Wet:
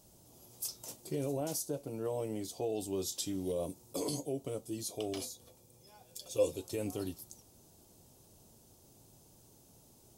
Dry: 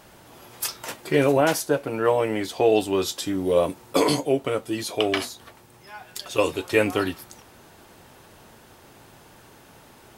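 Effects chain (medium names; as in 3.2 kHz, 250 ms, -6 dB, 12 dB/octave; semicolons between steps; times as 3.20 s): FFT filter 130 Hz 0 dB, 700 Hz -7 dB, 1.7 kHz -22 dB, 6.2 kHz +3 dB; peak limiter -18 dBFS, peak gain reduction 6 dB; 3.12–3.52 s: peaking EQ 2.5 kHz +9 dB 1.8 oct; 5.18–6.58 s: small resonant body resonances 510/2400/3400 Hz, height 13 dB, ringing for 85 ms; trim -8.5 dB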